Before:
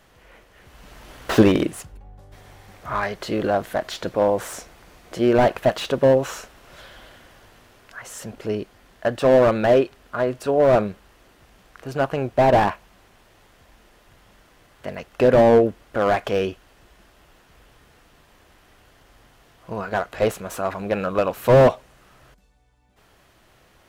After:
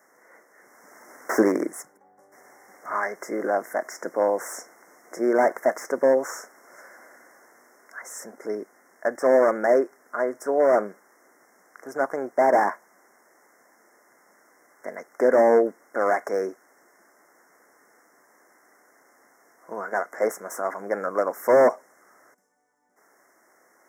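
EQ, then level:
high-pass filter 250 Hz 24 dB per octave
Chebyshev band-stop filter 2,100–5,300 Hz, order 5
low-shelf EQ 500 Hz −5 dB
0.0 dB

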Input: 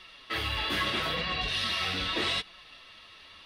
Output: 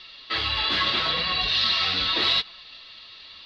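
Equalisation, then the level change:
dynamic equaliser 1,100 Hz, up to +5 dB, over −47 dBFS, Q 1.1
low-pass with resonance 4,300 Hz, resonance Q 4.3
0.0 dB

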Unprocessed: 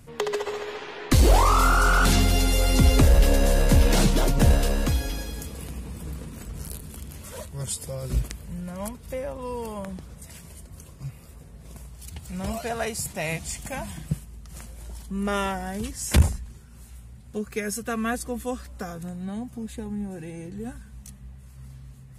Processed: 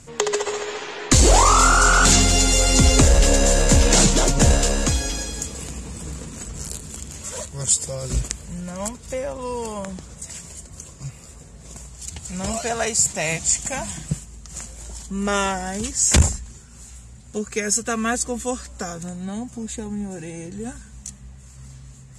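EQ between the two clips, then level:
low-pass with resonance 7,300 Hz, resonance Q 4.5
low-shelf EQ 230 Hz −4 dB
+5.0 dB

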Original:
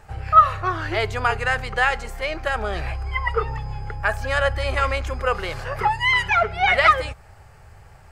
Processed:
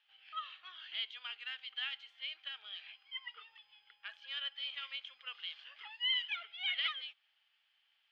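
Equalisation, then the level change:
resonant band-pass 3,200 Hz, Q 9.9
high-frequency loss of the air 300 metres
first difference
+12.5 dB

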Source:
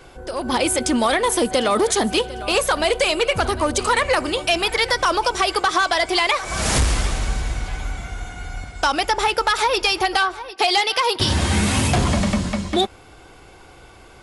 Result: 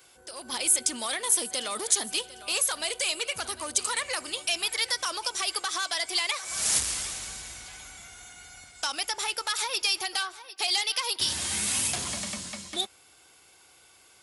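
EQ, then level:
high-pass filter 55 Hz
first-order pre-emphasis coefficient 0.9
low-shelf EQ 95 Hz −8 dB
0.0 dB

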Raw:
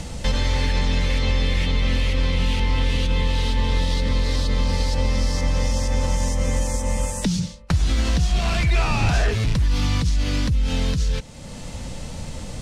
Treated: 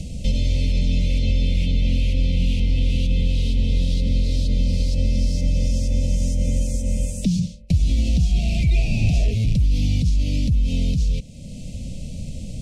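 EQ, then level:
elliptic band-stop filter 640–2,400 Hz, stop band 50 dB
low shelf with overshoot 290 Hz +6 dB, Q 1.5
−4.5 dB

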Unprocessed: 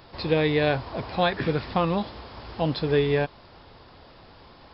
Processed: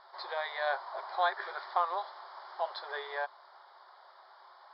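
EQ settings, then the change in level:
linear-phase brick-wall high-pass 370 Hz
low-pass filter 4,400 Hz 24 dB per octave
phaser with its sweep stopped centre 1,100 Hz, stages 4
−1.0 dB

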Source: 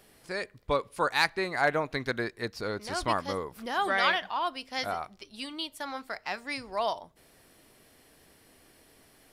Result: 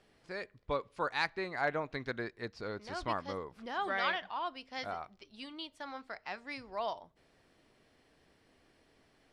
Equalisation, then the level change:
high-frequency loss of the air 97 metres
−6.5 dB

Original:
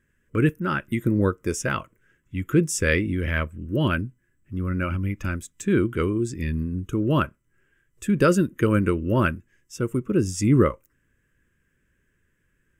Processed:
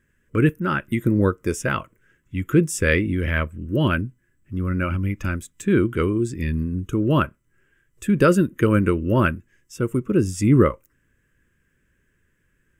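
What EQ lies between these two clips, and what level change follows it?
dynamic equaliser 6,000 Hz, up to −6 dB, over −47 dBFS, Q 1.5
+2.5 dB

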